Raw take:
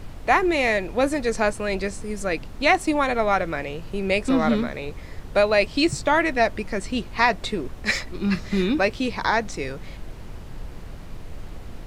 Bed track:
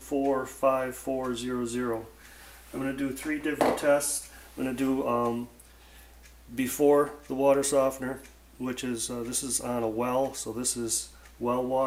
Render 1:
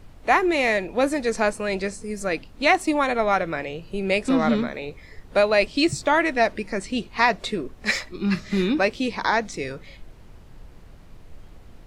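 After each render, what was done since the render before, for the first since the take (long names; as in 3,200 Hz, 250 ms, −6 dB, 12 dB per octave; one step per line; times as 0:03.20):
noise reduction from a noise print 9 dB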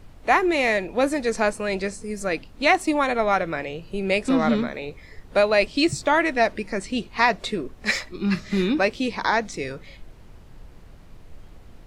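no processing that can be heard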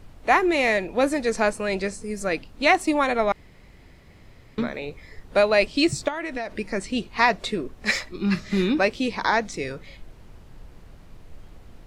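0:03.32–0:04.58: fill with room tone
0:06.08–0:06.56: downward compressor 12 to 1, threshold −25 dBFS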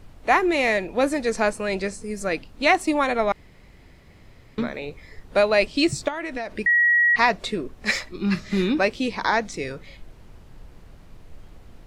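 0:06.66–0:07.16: beep over 1,910 Hz −14.5 dBFS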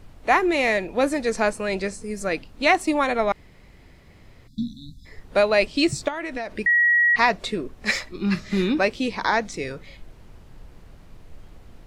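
0:04.47–0:05.06: time-frequency box erased 290–3,400 Hz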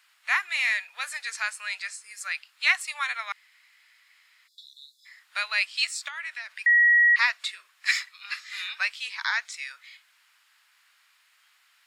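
inverse Chebyshev high-pass filter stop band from 310 Hz, stop band 70 dB
notch filter 6,000 Hz, Q 14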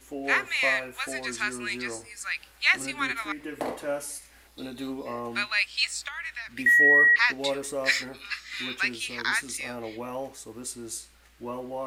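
mix in bed track −7.5 dB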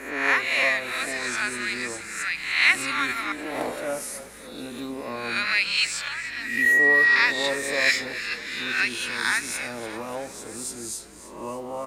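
peak hold with a rise ahead of every peak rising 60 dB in 0.77 s
echo with shifted repeats 292 ms, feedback 62%, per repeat −32 Hz, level −14.5 dB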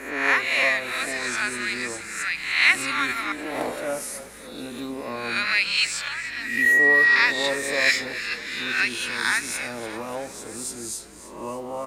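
level +1 dB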